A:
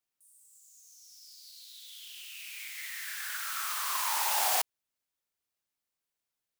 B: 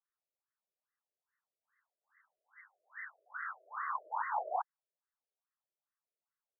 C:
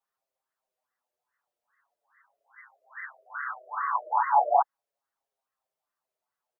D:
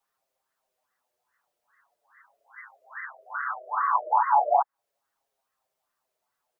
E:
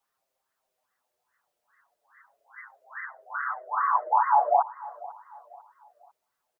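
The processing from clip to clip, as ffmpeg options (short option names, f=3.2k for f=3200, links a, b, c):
-af "highpass=330,afftfilt=real='re*between(b*sr/1024,460*pow(1500/460,0.5+0.5*sin(2*PI*2.4*pts/sr))/1.41,460*pow(1500/460,0.5+0.5*sin(2*PI*2.4*pts/sr))*1.41)':imag='im*between(b*sr/1024,460*pow(1500/460,0.5+0.5*sin(2*PI*2.4*pts/sr))/1.41,460*pow(1500/460,0.5+0.5*sin(2*PI*2.4*pts/sr))*1.41)':win_size=1024:overlap=0.75,volume=1dB"
-filter_complex "[0:a]equalizer=f=740:w=0.84:g=12.5,asplit=2[a][b];[b]adelay=7,afreqshift=-0.38[c];[a][c]amix=inputs=2:normalize=1,volume=5dB"
-filter_complex "[0:a]acrossover=split=610|1400[a][b][c];[a]acompressor=threshold=-40dB:ratio=4[d];[b]acompressor=threshold=-27dB:ratio=4[e];[c]acompressor=threshold=-50dB:ratio=4[f];[d][e][f]amix=inputs=3:normalize=0,volume=7dB"
-af "aecho=1:1:496|992|1488:0.112|0.0426|0.0162"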